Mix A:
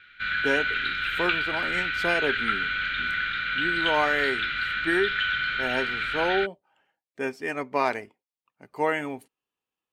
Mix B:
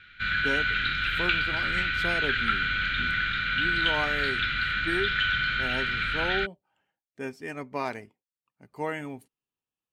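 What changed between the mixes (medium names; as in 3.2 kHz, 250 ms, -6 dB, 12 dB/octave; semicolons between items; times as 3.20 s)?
speech -7.5 dB; master: add tone controls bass +10 dB, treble +4 dB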